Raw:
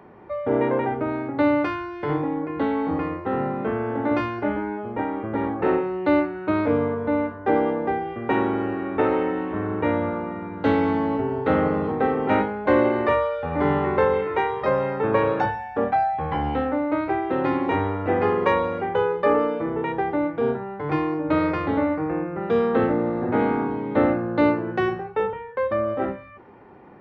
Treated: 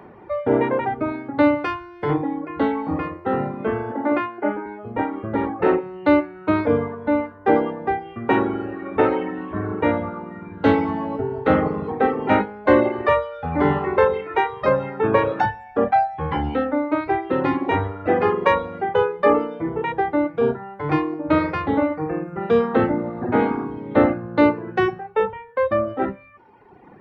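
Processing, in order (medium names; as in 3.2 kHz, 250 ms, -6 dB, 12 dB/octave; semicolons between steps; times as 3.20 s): reverb removal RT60 1.5 s; 3.92–4.66 s: three-band isolator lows -19 dB, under 200 Hz, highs -22 dB, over 3 kHz; trim +4.5 dB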